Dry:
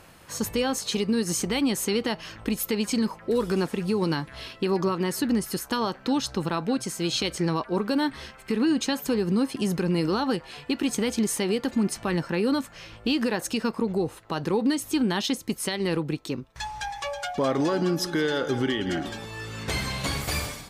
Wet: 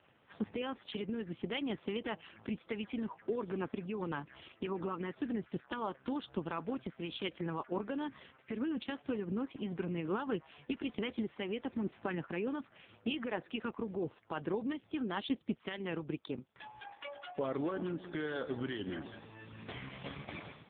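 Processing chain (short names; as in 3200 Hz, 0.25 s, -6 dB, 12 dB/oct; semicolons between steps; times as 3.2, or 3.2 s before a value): harmonic-percussive split harmonic -7 dB; gain -6.5 dB; AMR-NB 4.75 kbps 8000 Hz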